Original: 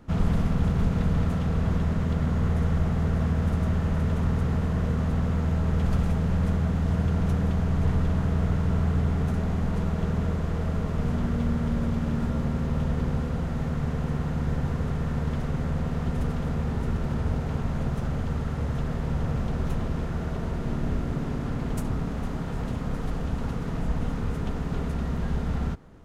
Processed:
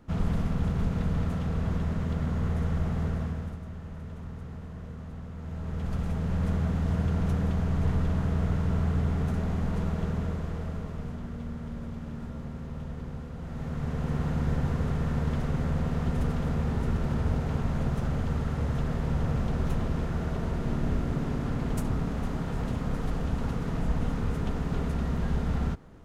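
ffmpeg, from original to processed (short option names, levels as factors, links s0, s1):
-af "volume=8.91,afade=t=out:st=3.04:d=0.56:silence=0.281838,afade=t=in:st=5.35:d=1.22:silence=0.237137,afade=t=out:st=9.88:d=1.31:silence=0.375837,afade=t=in:st=13.36:d=0.89:silence=0.298538"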